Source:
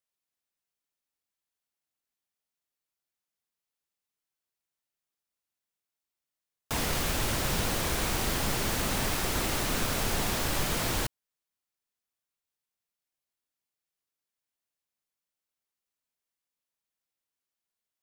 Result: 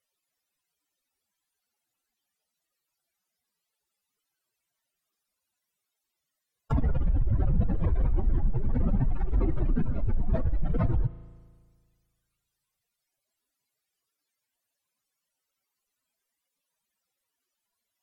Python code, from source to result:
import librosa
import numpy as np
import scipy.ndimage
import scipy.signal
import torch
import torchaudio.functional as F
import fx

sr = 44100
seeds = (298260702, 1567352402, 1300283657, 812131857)

y = fx.spec_expand(x, sr, power=3.3)
y = fx.rev_spring(y, sr, rt60_s=1.7, pass_ms=(36,), chirp_ms=50, drr_db=15.5)
y = fx.env_lowpass_down(y, sr, base_hz=1900.0, full_db=-27.0)
y = y * librosa.db_to_amplitude(7.5)